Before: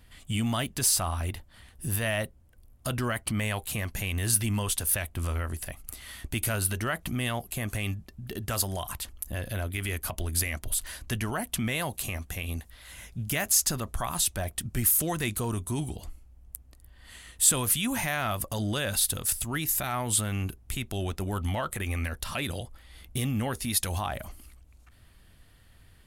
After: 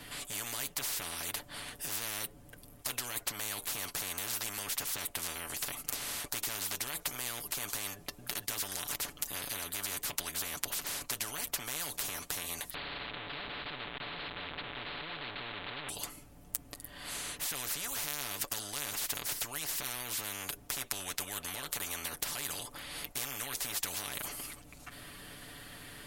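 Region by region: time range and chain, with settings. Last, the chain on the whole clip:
12.74–15.89 delta modulation 16 kbps, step -22 dBFS + low shelf 170 Hz -8.5 dB
whole clip: comb 6.9 ms; spectral compressor 10:1

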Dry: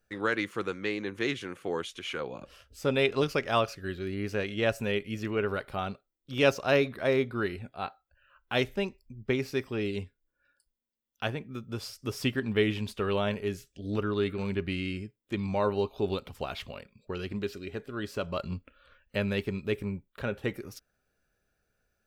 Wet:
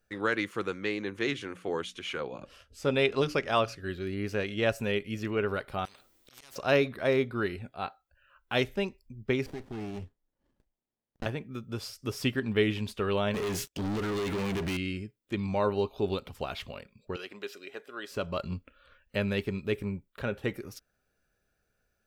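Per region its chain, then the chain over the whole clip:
1.17–3.9 Bessel low-pass 11000 Hz + notches 60/120/180/240/300 Hz
5.85–6.56 auto swell 0.497 s + compressor 8:1, threshold -43 dBFS + spectral compressor 10:1
9.46–11.26 notch 2200 Hz, Q 15 + compressor 5:1, threshold -33 dBFS + running maximum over 33 samples
13.34–14.77 low shelf 120 Hz -9 dB + compressor 10:1, threshold -35 dBFS + sample leveller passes 5
17.16–18.11 HPF 520 Hz + notch 4400 Hz, Q 15
whole clip: dry

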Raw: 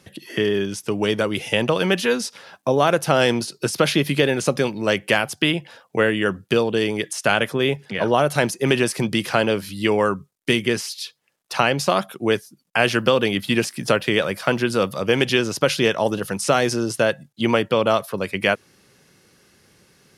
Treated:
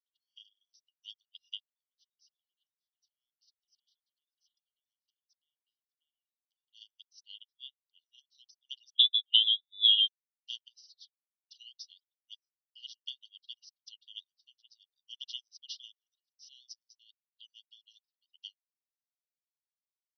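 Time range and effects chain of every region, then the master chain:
1.6–6.68 compressor 16:1, threshold -28 dBFS + bands offset in time highs, lows 0.59 s, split 3200 Hz
8.9–10.08 inverted band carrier 3700 Hz + three-band squash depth 40%
whole clip: FFT band-pass 2800–6100 Hz; reverb removal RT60 1.1 s; upward expander 2.5:1, over -46 dBFS

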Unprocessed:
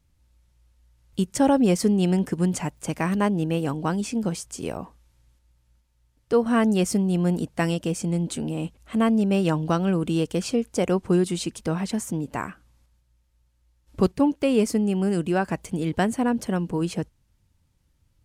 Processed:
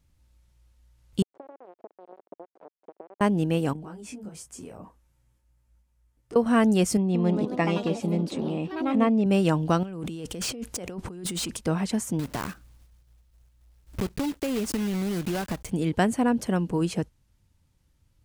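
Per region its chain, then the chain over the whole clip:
1.22–3.21 compressor 16:1, threshold -30 dBFS + sample gate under -28 dBFS + Butterworth band-pass 510 Hz, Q 1.2
3.73–6.36 bell 4000 Hz -6.5 dB 1.3 oct + compressor 8:1, threshold -32 dBFS + detuned doubles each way 16 cents
6.97–9.26 LPF 4000 Hz + notch comb 1500 Hz + echoes that change speed 0.176 s, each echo +3 st, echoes 3, each echo -6 dB
9.83–11.57 negative-ratio compressor -33 dBFS + hard clip -27 dBFS
12.19–15.71 block floating point 3-bit + low shelf 130 Hz +8 dB + compressor, threshold -24 dBFS
whole clip: dry

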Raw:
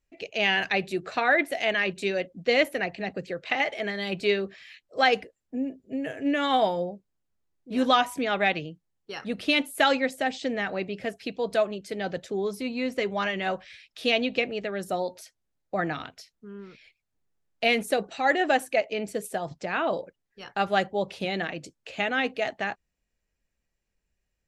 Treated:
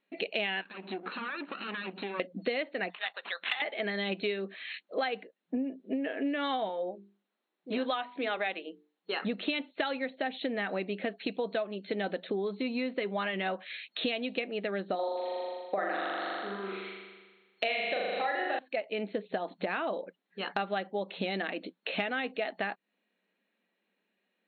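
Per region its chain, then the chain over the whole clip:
0.61–2.2 minimum comb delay 0.72 ms + compressor 20:1, threshold -38 dBFS + air absorption 250 m
2.9–3.62 HPF 940 Hz 24 dB/oct + careless resampling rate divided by 8×, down none, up hold
6.69–9.22 HPF 300 Hz + notches 50/100/150/200/250/300/350/400/450 Hz
14.95–18.59 BPF 380–6700 Hz + flutter echo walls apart 7 m, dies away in 1.4 s
whole clip: FFT band-pass 180–4300 Hz; compressor 10:1, threshold -37 dBFS; gain +7.5 dB

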